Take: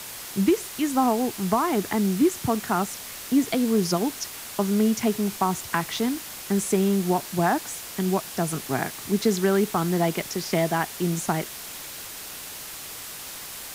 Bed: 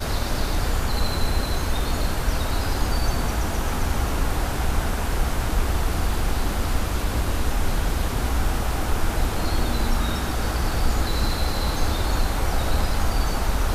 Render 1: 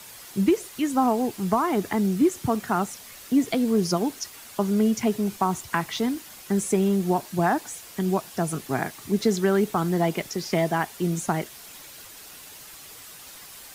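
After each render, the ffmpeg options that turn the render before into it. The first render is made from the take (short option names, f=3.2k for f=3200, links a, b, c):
-af "afftdn=nr=8:nf=-38"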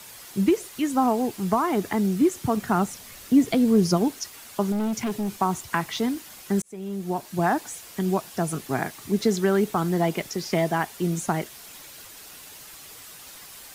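-filter_complex "[0:a]asettb=1/sr,asplit=3[a][b][c];[a]atrim=end=2.574[d];[b]atrim=start=2.57:end=4.08,asetpts=PTS-STARTPTS,afade=t=in:d=0.004:c=qsin,afade=t=out:st=1.506:d=0.004:c=qsin,lowshelf=f=250:g=7[e];[c]atrim=start=4.076[f];[d][e]acrossfade=d=0.004:c1=hsin:c2=qsin[g];[g][f]acrossfade=d=0.004:c1=qsin:c2=hsin,asettb=1/sr,asplit=3[h][i][j];[h]atrim=end=4.724[k];[i]atrim=start=4.72:end=5.31,asetpts=PTS-STARTPTS,afade=t=in:d=0.004:c=qsin,afade=t=out:st=0.586:d=0.004:c=qsin,asoftclip=type=hard:threshold=-23.5dB[l];[j]atrim=start=5.306[m];[k][l]acrossfade=d=0.004:c1=hsin:c2=qsin[n];[n][m]acrossfade=d=0.004:c1=qsin:c2=hsin,asplit=2[o][p];[o]atrim=end=6.62,asetpts=PTS-STARTPTS,afade=t=out:st=6.616:d=0.004:c=hsin[q];[p]atrim=start=6.62,asetpts=PTS-STARTPTS,afade=t=in:d=0.87[r];[q][r]concat=n=2:v=0:a=1"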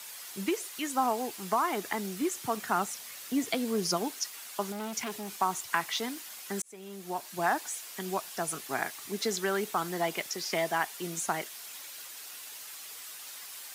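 -af "highpass=f=1.1k:p=1"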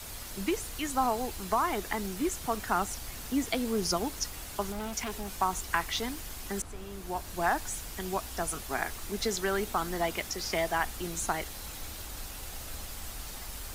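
-filter_complex "[1:a]volume=-21.5dB[a];[0:a][a]amix=inputs=2:normalize=0"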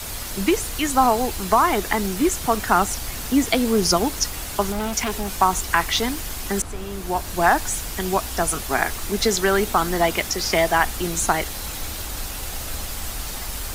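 -af "volume=11dB,alimiter=limit=-2dB:level=0:latency=1"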